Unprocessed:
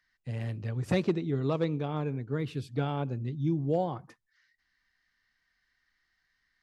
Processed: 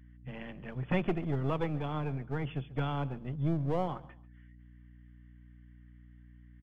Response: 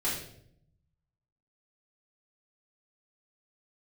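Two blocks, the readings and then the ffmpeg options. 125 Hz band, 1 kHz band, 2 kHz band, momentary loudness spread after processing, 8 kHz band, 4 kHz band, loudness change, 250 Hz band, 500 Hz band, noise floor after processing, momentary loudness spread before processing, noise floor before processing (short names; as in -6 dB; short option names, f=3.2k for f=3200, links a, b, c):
-2.5 dB, -0.5 dB, +0.5 dB, 13 LU, n/a, -3.5 dB, -3.0 dB, -3.5 dB, -4.5 dB, -55 dBFS, 7 LU, -78 dBFS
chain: -filter_complex "[0:a]aecho=1:1:139|278:0.106|0.0297,afftfilt=real='re*between(b*sr/4096,120,3500)':imag='im*between(b*sr/4096,120,3500)':win_size=4096:overlap=0.75,acrossover=split=200|770|1200[a][b][c][d];[b]aeval=exprs='max(val(0),0)':c=same[e];[a][e][c][d]amix=inputs=4:normalize=0,aeval=exprs='val(0)+0.00224*(sin(2*PI*60*n/s)+sin(2*PI*2*60*n/s)/2+sin(2*PI*3*60*n/s)/3+sin(2*PI*4*60*n/s)/4+sin(2*PI*5*60*n/s)/5)':c=same"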